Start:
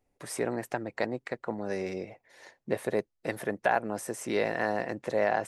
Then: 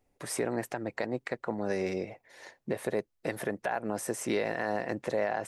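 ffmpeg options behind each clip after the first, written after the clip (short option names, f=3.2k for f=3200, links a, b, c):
-af "alimiter=limit=-22dB:level=0:latency=1:release=127,volume=2.5dB"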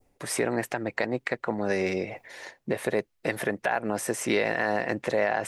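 -af "adynamicequalizer=threshold=0.00355:dfrequency=2400:dqfactor=0.82:tfrequency=2400:tqfactor=0.82:attack=5:release=100:ratio=0.375:range=2.5:mode=boostabove:tftype=bell,areverse,acompressor=mode=upward:threshold=-38dB:ratio=2.5,areverse,volume=4dB"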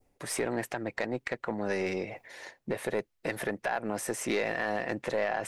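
-af "aeval=exprs='(tanh(7.08*val(0)+0.15)-tanh(0.15))/7.08':c=same,volume=-3dB"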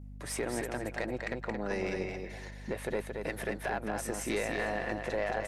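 -af "aecho=1:1:224|448|672:0.562|0.129|0.0297,aeval=exprs='val(0)+0.00891*(sin(2*PI*50*n/s)+sin(2*PI*2*50*n/s)/2+sin(2*PI*3*50*n/s)/3+sin(2*PI*4*50*n/s)/4+sin(2*PI*5*50*n/s)/5)':c=same,volume=-3.5dB"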